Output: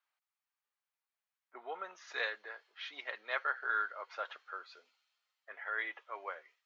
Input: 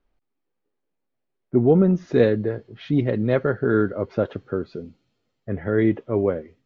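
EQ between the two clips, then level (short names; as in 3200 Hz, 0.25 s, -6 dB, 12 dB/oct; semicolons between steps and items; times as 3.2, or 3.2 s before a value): HPF 980 Hz 24 dB/oct; -2.5 dB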